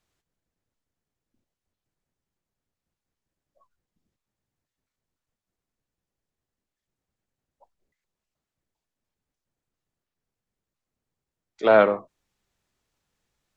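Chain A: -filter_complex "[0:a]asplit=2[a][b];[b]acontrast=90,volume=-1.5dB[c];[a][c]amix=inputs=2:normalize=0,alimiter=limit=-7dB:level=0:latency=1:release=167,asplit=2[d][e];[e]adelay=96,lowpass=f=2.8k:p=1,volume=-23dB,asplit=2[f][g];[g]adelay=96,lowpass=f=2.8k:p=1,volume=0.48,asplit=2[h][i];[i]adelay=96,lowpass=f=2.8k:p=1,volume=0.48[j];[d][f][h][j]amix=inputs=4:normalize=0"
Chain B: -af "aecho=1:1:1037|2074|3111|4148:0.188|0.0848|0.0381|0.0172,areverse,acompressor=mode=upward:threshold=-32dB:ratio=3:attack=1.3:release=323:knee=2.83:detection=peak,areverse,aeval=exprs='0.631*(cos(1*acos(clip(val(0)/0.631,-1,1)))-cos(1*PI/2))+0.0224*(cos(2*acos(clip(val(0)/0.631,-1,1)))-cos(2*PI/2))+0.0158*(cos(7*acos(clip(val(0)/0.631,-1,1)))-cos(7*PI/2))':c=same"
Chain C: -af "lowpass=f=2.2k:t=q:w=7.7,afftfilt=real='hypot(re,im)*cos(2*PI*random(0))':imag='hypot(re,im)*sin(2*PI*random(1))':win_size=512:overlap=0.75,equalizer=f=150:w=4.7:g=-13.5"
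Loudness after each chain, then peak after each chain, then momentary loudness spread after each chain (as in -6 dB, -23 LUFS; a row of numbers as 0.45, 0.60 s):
-19.0, -22.5, -23.5 LUFS; -6.5, -4.5, -5.5 dBFS; 7, 18, 12 LU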